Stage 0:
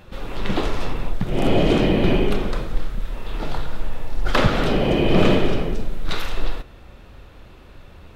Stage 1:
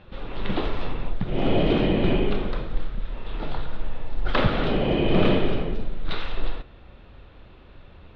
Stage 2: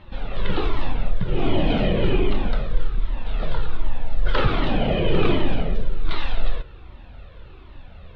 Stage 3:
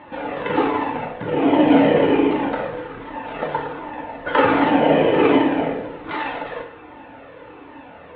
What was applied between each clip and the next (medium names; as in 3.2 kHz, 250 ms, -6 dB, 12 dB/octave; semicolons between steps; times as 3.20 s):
Chebyshev low-pass 3.8 kHz, order 3; trim -3.5 dB
in parallel at +2.5 dB: peak limiter -16.5 dBFS, peak gain reduction 10 dB; on the sum: Shepard-style flanger falling 1.3 Hz
in parallel at -3.5 dB: hard clipper -22.5 dBFS, distortion -7 dB; on the sum: cabinet simulation 230–2800 Hz, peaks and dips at 270 Hz +7 dB, 520 Hz +6 dB, 880 Hz +9 dB, 1.8 kHz +5 dB; FDN reverb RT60 0.61 s, low-frequency decay 0.8×, high-frequency decay 0.95×, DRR 1 dB